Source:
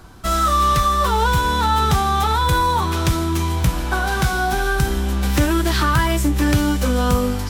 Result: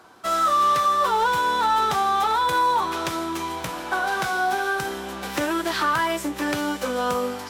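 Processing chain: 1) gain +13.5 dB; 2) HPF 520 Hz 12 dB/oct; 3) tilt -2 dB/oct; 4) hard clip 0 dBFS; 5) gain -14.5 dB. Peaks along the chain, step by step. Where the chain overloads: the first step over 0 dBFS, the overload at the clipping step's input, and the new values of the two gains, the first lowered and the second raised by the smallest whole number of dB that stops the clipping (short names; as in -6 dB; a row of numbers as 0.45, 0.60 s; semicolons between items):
+7.5, +4.5, +4.0, 0.0, -14.5 dBFS; step 1, 4.0 dB; step 1 +9.5 dB, step 5 -10.5 dB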